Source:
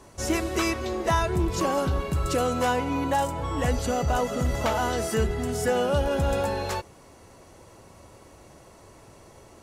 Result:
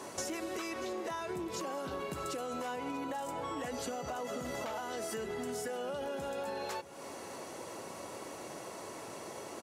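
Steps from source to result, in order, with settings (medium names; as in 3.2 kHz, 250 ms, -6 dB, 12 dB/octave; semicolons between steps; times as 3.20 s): high-pass 240 Hz 12 dB/octave; peak limiter -22.5 dBFS, peak gain reduction 10 dB; compression 10:1, threshold -43 dBFS, peak gain reduction 16 dB; delay 640 ms -17 dB; trim +7 dB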